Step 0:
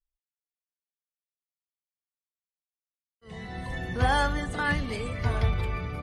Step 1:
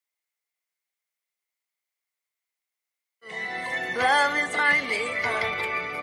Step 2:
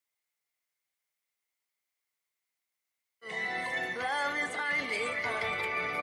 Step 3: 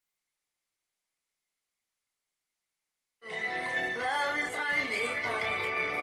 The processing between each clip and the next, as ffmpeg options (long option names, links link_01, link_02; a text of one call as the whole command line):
ffmpeg -i in.wav -filter_complex "[0:a]highpass=460,equalizer=frequency=2100:width_type=o:width=0.2:gain=13.5,asplit=2[link_01][link_02];[link_02]alimiter=level_in=1dB:limit=-24dB:level=0:latency=1,volume=-1dB,volume=-1dB[link_03];[link_01][link_03]amix=inputs=2:normalize=0,volume=2dB" out.wav
ffmpeg -i in.wav -af "areverse,acompressor=threshold=-30dB:ratio=5,areverse,aecho=1:1:472:0.211" out.wav
ffmpeg -i in.wav -filter_complex "[0:a]asplit=2[link_01][link_02];[link_02]adelay=30,volume=-4dB[link_03];[link_01][link_03]amix=inputs=2:normalize=0" -ar 48000 -c:a libopus -b:a 20k out.opus